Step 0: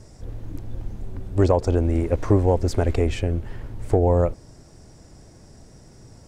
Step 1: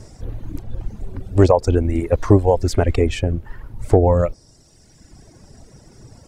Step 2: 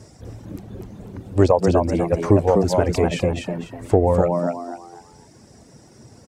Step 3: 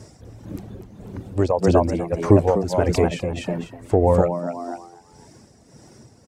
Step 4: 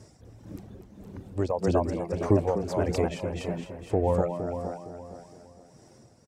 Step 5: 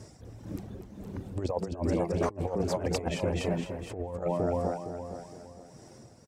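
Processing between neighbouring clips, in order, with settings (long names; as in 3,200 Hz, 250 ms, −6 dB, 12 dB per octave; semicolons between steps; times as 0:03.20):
reverb reduction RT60 1.5 s; level +6 dB
high-pass filter 89 Hz 12 dB per octave; on a send: echo with shifted repeats 248 ms, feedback 31%, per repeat +85 Hz, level −4 dB; on the sum: level −2 dB
amplitude tremolo 1.7 Hz, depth 57%; level +1.5 dB
repeating echo 463 ms, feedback 32%, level −10 dB; level −8 dB
compressor whose output falls as the input rises −29 dBFS, ratio −0.5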